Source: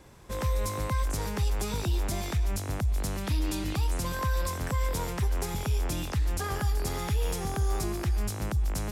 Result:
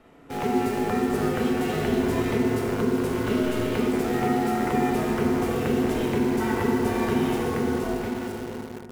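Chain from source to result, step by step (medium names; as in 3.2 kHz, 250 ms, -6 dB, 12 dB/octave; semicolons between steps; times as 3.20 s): fade out at the end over 1.62 s; resonant high shelf 3.6 kHz -9 dB, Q 1.5; ring modulator 310 Hz; FDN reverb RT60 3.3 s, high-frequency decay 0.35×, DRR -3.5 dB; in parallel at -5.5 dB: word length cut 6-bit, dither none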